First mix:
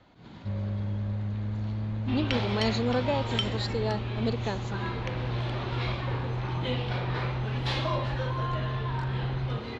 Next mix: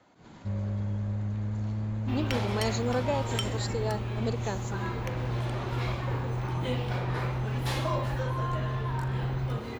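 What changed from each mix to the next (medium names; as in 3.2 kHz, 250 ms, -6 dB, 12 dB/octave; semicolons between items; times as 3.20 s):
speech: add high-pass 260 Hz 6 dB/octave; master: remove resonant low-pass 3.9 kHz, resonance Q 1.8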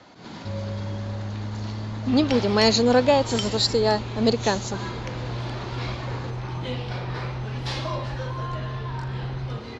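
speech +11.5 dB; master: add resonant low-pass 5 kHz, resonance Q 2.2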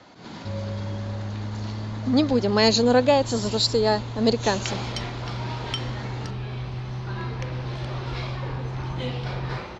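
second sound: entry +2.35 s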